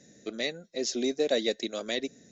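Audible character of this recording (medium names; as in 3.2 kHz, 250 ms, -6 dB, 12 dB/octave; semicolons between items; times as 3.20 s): noise floor -58 dBFS; spectral tilt -2.5 dB/octave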